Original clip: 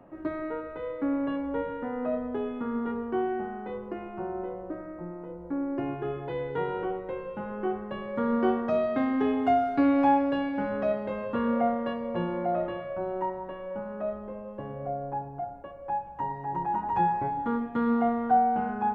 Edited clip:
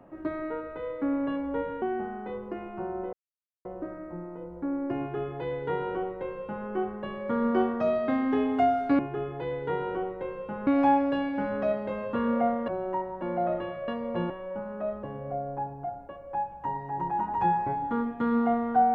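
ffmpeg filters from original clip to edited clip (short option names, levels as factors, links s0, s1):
-filter_complex "[0:a]asplit=10[s0][s1][s2][s3][s4][s5][s6][s7][s8][s9];[s0]atrim=end=1.822[s10];[s1]atrim=start=3.218:end=4.53,asetpts=PTS-STARTPTS,afade=t=out:st=1.308:d=0.004:c=hsin,apad=pad_dur=0.52[s11];[s2]atrim=start=4.53:end=9.872,asetpts=PTS-STARTPTS,afade=t=in:d=0.004:c=hsin[s12];[s3]atrim=start=5.868:end=7.552[s13];[s4]atrim=start=9.868:end=11.882[s14];[s5]atrim=start=12.958:end=13.502[s15];[s6]atrim=start=12.298:end=12.962[s16];[s7]atrim=start=11.878:end=12.302[s17];[s8]atrim=start=13.498:end=14.232[s18];[s9]atrim=start=14.578[s19];[s11][s12]concat=n=2:v=0:a=1[s20];[s10][s20]acrossfade=d=0.004:c1=hsin:c2=hsin[s21];[s21][s13]acrossfade=d=0.004:c1=hsin:c2=hsin[s22];[s22][s14]acrossfade=d=0.004:c1=hsin:c2=hsin[s23];[s23][s15]acrossfade=d=0.004:c1=hsin:c2=hsin[s24];[s24][s16]acrossfade=d=0.004:c1=hsin:c2=hsin[s25];[s25][s17]acrossfade=d=0.004:c1=hsin:c2=hsin[s26];[s26][s18]acrossfade=d=0.004:c1=hsin:c2=hsin[s27];[s27][s19]acrossfade=d=0.004:c1=hsin:c2=hsin"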